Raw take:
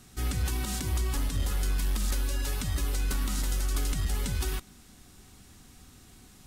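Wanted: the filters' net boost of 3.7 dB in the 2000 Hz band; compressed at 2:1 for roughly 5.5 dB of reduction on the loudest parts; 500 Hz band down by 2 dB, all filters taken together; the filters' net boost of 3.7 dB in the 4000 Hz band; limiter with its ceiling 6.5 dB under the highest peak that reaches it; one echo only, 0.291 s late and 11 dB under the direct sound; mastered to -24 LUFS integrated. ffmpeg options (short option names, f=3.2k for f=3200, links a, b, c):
-af "equalizer=f=500:t=o:g=-3,equalizer=f=2k:t=o:g=4,equalizer=f=4k:t=o:g=3.5,acompressor=threshold=-35dB:ratio=2,alimiter=level_in=6dB:limit=-24dB:level=0:latency=1,volume=-6dB,aecho=1:1:291:0.282,volume=15dB"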